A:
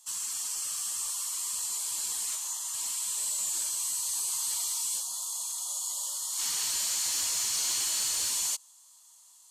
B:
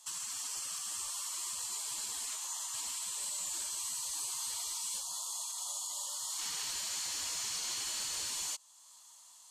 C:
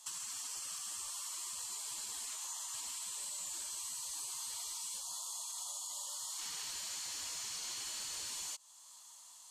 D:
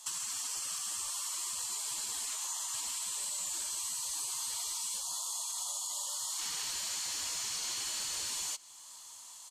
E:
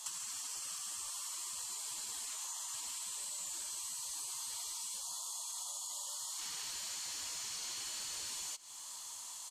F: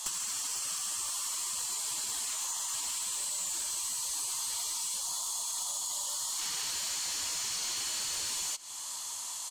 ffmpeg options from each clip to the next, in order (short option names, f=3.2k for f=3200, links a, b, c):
-af "highshelf=f=7.3k:g=-11,alimiter=level_in=11dB:limit=-24dB:level=0:latency=1:release=381,volume=-11dB,volume=5dB"
-af "acompressor=threshold=-41dB:ratio=6,volume=1dB"
-af "aecho=1:1:925:0.0668,volume=5.5dB"
-af "acompressor=threshold=-44dB:ratio=6,volume=3.5dB"
-af "aeval=exprs='clip(val(0),-1,0.0119)':c=same,volume=8dB"